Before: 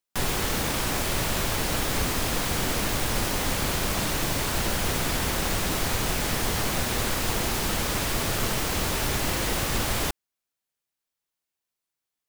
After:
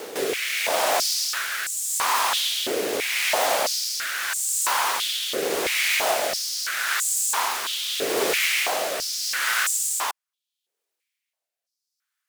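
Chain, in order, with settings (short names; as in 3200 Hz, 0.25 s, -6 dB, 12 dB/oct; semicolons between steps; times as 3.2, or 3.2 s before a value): reverse echo 0.51 s -12 dB; rotary speaker horn 0.8 Hz; stepped high-pass 3 Hz 430–7600 Hz; gain +4 dB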